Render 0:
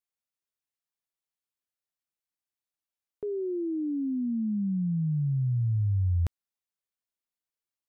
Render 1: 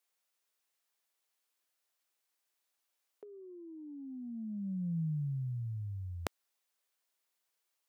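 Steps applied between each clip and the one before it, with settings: HPF 400 Hz 12 dB/oct; negative-ratio compressor -43 dBFS, ratio -0.5; gain +5 dB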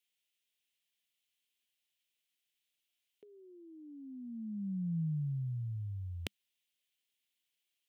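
EQ curve 200 Hz 0 dB, 1200 Hz -18 dB, 2000 Hz -2 dB, 3100 Hz +7 dB, 4700 Hz -4 dB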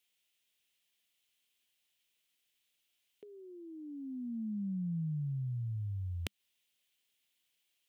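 compressor 3:1, threshold -42 dBFS, peak gain reduction 7 dB; gain +5.5 dB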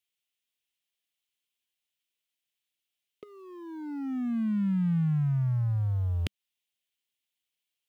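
sample leveller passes 3; gain -1.5 dB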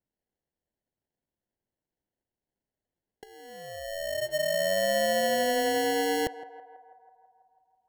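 inverted band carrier 3300 Hz; sample-and-hold 36×; narrowing echo 0.164 s, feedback 72%, band-pass 870 Hz, level -14.5 dB

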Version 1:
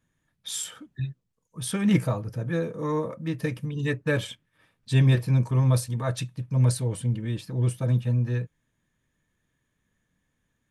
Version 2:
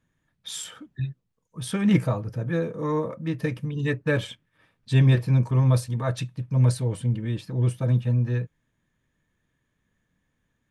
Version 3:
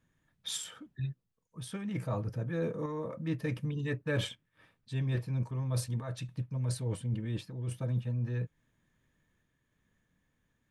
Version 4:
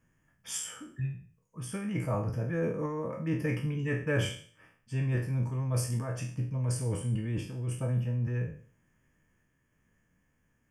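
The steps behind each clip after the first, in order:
high shelf 6300 Hz -8.5 dB; gain +1.5 dB
reverse; compressor 12:1, threshold -28 dBFS, peak gain reduction 14.5 dB; reverse; random-step tremolo
spectral trails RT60 0.48 s; Butterworth band-stop 3900 Hz, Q 2.3; gain +2 dB

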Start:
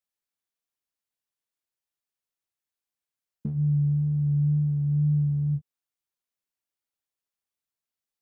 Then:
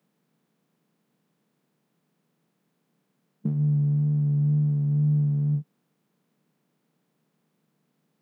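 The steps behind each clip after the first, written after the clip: per-bin compression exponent 0.6; steep high-pass 150 Hz 48 dB/oct; gain +4 dB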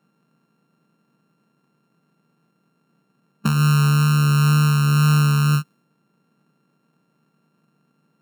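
sample sorter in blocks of 32 samples; in parallel at -3 dB: hard clip -25.5 dBFS, distortion -11 dB; on the sum: mismatched tape noise reduction decoder only; gain +3.5 dB

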